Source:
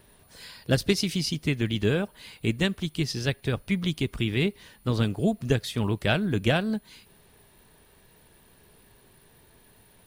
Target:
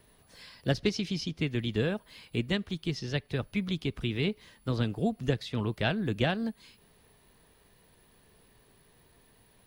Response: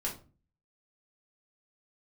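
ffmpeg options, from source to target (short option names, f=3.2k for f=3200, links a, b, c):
-filter_complex "[0:a]acrossover=split=370|5600[a][b][c];[c]acompressor=threshold=-59dB:ratio=6[d];[a][b][d]amix=inputs=3:normalize=0,asetrate=45938,aresample=44100,volume=-4.5dB"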